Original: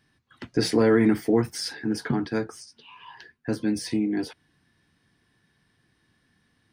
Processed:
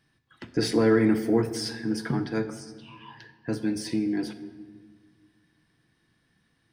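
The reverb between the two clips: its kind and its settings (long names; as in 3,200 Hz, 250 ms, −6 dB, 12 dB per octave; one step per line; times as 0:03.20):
rectangular room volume 1,500 cubic metres, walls mixed, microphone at 0.68 metres
level −2.5 dB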